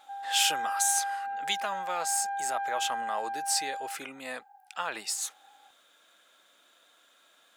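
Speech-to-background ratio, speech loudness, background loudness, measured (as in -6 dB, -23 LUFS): 3.0 dB, -31.0 LUFS, -34.0 LUFS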